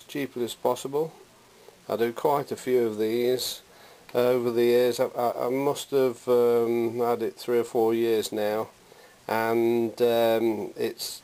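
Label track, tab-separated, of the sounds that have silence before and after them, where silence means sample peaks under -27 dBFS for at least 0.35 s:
1.900000	3.530000	sound
4.150000	8.630000	sound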